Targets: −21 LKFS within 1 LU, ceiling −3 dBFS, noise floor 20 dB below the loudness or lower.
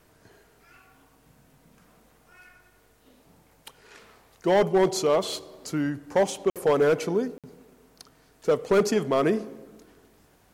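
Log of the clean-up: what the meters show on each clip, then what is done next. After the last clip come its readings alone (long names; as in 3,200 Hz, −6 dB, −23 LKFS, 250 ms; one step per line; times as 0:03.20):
share of clipped samples 1.1%; peaks flattened at −15.0 dBFS; number of dropouts 2; longest dropout 57 ms; integrated loudness −25.0 LKFS; sample peak −15.0 dBFS; target loudness −21.0 LKFS
→ clipped peaks rebuilt −15 dBFS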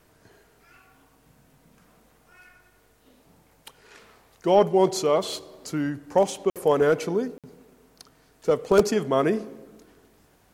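share of clipped samples 0.0%; number of dropouts 2; longest dropout 57 ms
→ repair the gap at 0:06.50/0:07.38, 57 ms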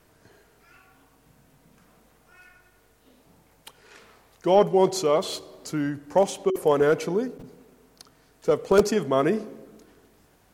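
number of dropouts 0; integrated loudness −23.5 LKFS; sample peak −6.0 dBFS; target loudness −21.0 LKFS
→ level +2.5 dB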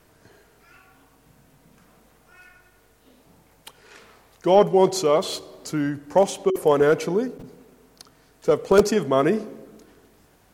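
integrated loudness −21.0 LKFS; sample peak −3.5 dBFS; background noise floor −58 dBFS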